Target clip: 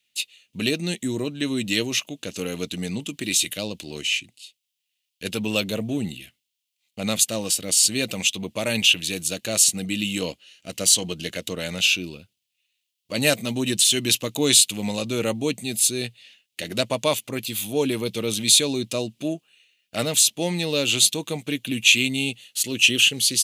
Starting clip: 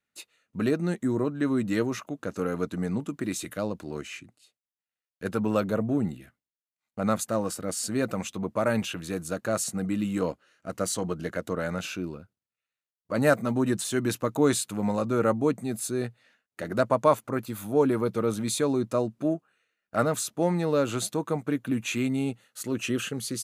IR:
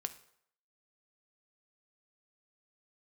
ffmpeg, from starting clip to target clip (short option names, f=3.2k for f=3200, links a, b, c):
-af "highshelf=f=2k:t=q:w=3:g=13.5"